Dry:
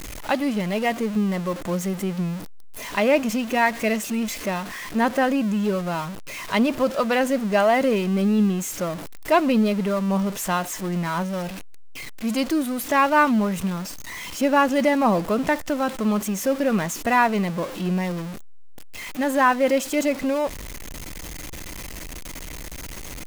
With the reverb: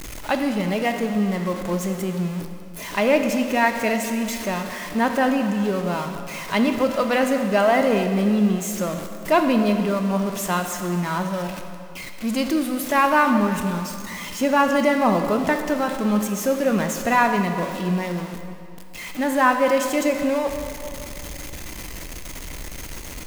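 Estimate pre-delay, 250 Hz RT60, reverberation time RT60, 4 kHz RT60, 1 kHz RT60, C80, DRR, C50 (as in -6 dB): 15 ms, 2.4 s, 2.6 s, 2.0 s, 2.6 s, 7.5 dB, 5.5 dB, 6.5 dB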